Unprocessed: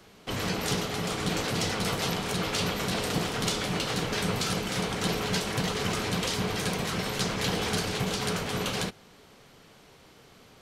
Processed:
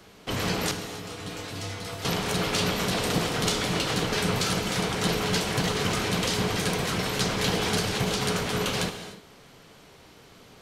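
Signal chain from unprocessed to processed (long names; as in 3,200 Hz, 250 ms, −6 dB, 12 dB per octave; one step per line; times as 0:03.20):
0:00.71–0:02.05: tuned comb filter 97 Hz, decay 0.34 s, harmonics odd, mix 80%
reverb whose tail is shaped and stops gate 320 ms flat, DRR 9 dB
level +2.5 dB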